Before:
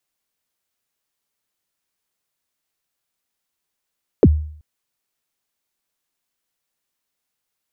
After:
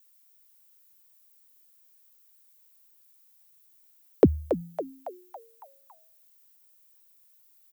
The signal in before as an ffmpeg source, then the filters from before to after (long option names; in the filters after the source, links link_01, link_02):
-f lavfi -i "aevalsrc='0.631*pow(10,-3*t/0.57)*sin(2*PI*(530*0.045/log(76/530)*(exp(log(76/530)*min(t,0.045)/0.045)-1)+76*max(t-0.045,0)))':duration=0.38:sample_rate=44100"
-filter_complex "[0:a]aemphasis=mode=production:type=bsi,asplit=2[link_01][link_02];[link_02]asplit=6[link_03][link_04][link_05][link_06][link_07][link_08];[link_03]adelay=278,afreqshift=95,volume=-9.5dB[link_09];[link_04]adelay=556,afreqshift=190,volume=-15.5dB[link_10];[link_05]adelay=834,afreqshift=285,volume=-21.5dB[link_11];[link_06]adelay=1112,afreqshift=380,volume=-27.6dB[link_12];[link_07]adelay=1390,afreqshift=475,volume=-33.6dB[link_13];[link_08]adelay=1668,afreqshift=570,volume=-39.6dB[link_14];[link_09][link_10][link_11][link_12][link_13][link_14]amix=inputs=6:normalize=0[link_15];[link_01][link_15]amix=inputs=2:normalize=0"